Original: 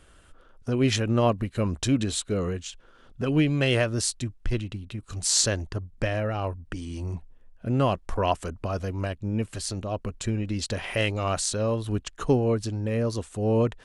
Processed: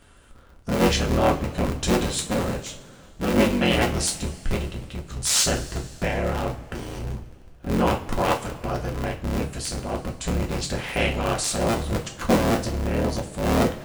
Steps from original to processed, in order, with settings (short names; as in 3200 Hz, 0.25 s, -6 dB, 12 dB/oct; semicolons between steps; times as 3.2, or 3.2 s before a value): cycle switcher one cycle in 3, inverted; two-slope reverb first 0.29 s, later 2.4 s, from -20 dB, DRR 1 dB